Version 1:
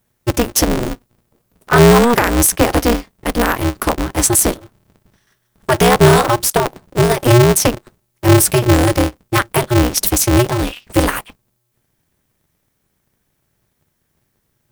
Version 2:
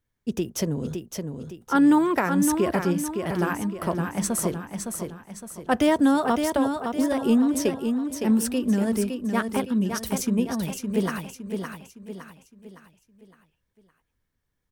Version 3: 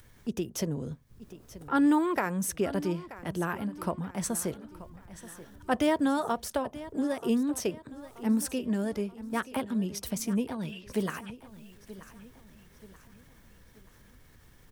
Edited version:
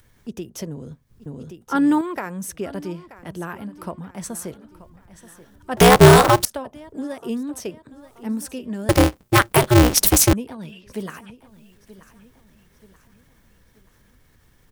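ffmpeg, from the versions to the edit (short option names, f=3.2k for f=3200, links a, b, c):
-filter_complex "[0:a]asplit=2[a][b];[2:a]asplit=4[c][d][e][f];[c]atrim=end=1.262[g];[1:a]atrim=start=1.258:end=2.012[h];[d]atrim=start=2.008:end=5.772[i];[a]atrim=start=5.768:end=6.452[j];[e]atrim=start=6.448:end=8.892[k];[b]atrim=start=8.888:end=10.332[l];[f]atrim=start=10.328[m];[g][h]acrossfade=d=0.004:c1=hsin:c2=hsin[n];[n][i]acrossfade=d=0.004:c1=hsin:c2=hsin[o];[o][j]acrossfade=d=0.004:c1=hsin:c2=hsin[p];[p][k]acrossfade=d=0.004:c1=hsin:c2=hsin[q];[q][l]acrossfade=d=0.004:c1=hsin:c2=hsin[r];[r][m]acrossfade=d=0.004:c1=hsin:c2=hsin"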